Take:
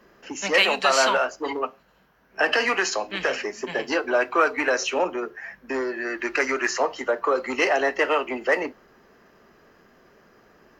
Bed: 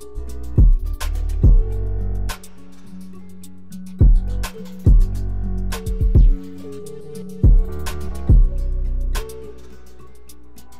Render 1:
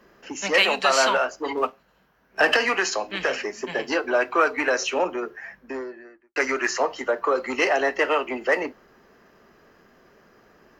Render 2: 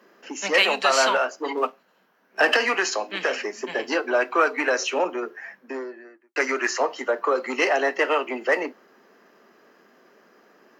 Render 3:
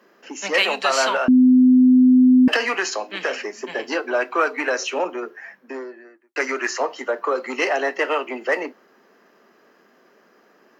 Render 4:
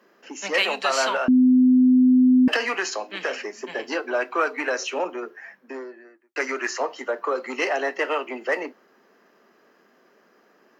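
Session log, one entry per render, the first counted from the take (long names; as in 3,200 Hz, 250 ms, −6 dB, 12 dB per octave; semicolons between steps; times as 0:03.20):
0:01.57–0:02.57: leveller curve on the samples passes 1; 0:05.31–0:06.36: fade out and dull
high-pass filter 210 Hz 24 dB per octave
0:01.28–0:02.48: beep over 254 Hz −9 dBFS
level −3 dB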